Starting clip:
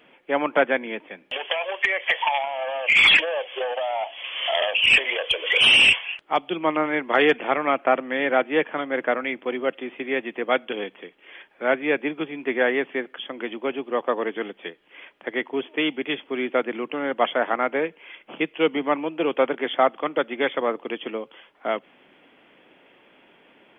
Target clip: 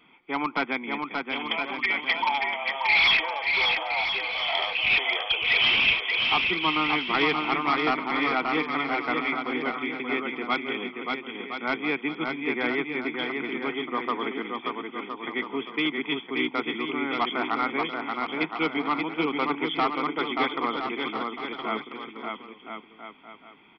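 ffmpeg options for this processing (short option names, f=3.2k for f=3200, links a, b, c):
-af "aecho=1:1:0.9:0.79,aresample=11025,asoftclip=type=hard:threshold=-13.5dB,aresample=44100,aecho=1:1:580|1015|1341|1586|1769:0.631|0.398|0.251|0.158|0.1,volume=-4.5dB"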